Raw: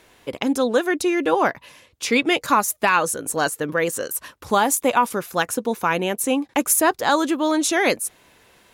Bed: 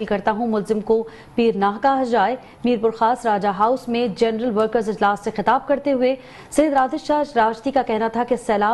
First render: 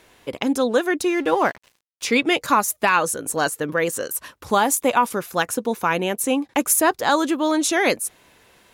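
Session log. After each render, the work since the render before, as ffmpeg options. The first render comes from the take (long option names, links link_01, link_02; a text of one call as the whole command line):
ffmpeg -i in.wav -filter_complex "[0:a]asettb=1/sr,asplit=3[link_01][link_02][link_03];[link_01]atrim=end=1.014[link_04];[link_02]atrim=start=1.01:end=2.05,asetpts=PTS-STARTPTS,afade=type=in:duration=0.004:curve=qsin,afade=type=out:start_time=1.036:duration=0.004:curve=qsin,aeval=exprs='sgn(val(0))*max(abs(val(0))-0.00841,0)':channel_layout=same[link_05];[link_03]atrim=start=2.046[link_06];[link_04][link_05]acrossfade=duration=0.004:curve1=hsin:curve2=qsin[link_07];[link_07][link_06]acrossfade=duration=0.004:curve1=qsin:curve2=hsin" out.wav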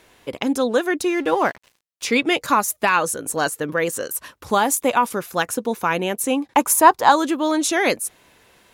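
ffmpeg -i in.wav -filter_complex "[0:a]asettb=1/sr,asplit=3[link_01][link_02][link_03];[link_01]atrim=end=6.554[link_04];[link_02]atrim=start=6.55:end=7.12,asetpts=PTS-STARTPTS,afade=type=in:duration=0.004:curve=qsin,afade=type=out:start_time=0.566:duration=0.004:curve=qsin,equalizer=frequency=950:width=2.3:gain=12[link_05];[link_03]atrim=start=7.116[link_06];[link_04][link_05]acrossfade=duration=0.004:curve1=hsin:curve2=qsin[link_07];[link_07][link_06]acrossfade=duration=0.004:curve1=qsin:curve2=hsin" out.wav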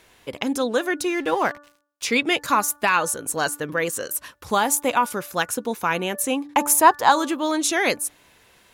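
ffmpeg -i in.wav -af "equalizer=frequency=370:width=0.39:gain=-3.5,bandreject=frequency=291.5:width_type=h:width=4,bandreject=frequency=583:width_type=h:width=4,bandreject=frequency=874.5:width_type=h:width=4,bandreject=frequency=1166:width_type=h:width=4,bandreject=frequency=1457.5:width_type=h:width=4,bandreject=frequency=1749:width_type=h:width=4" out.wav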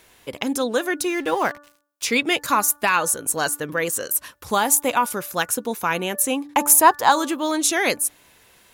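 ffmpeg -i in.wav -af "highshelf=frequency=8600:gain=8" out.wav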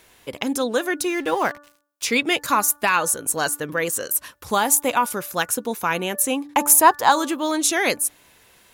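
ffmpeg -i in.wav -af anull out.wav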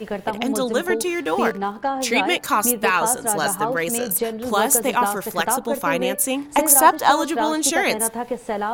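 ffmpeg -i in.wav -i bed.wav -filter_complex "[1:a]volume=-6.5dB[link_01];[0:a][link_01]amix=inputs=2:normalize=0" out.wav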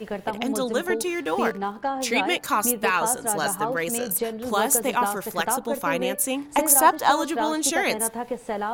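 ffmpeg -i in.wav -af "volume=-3.5dB" out.wav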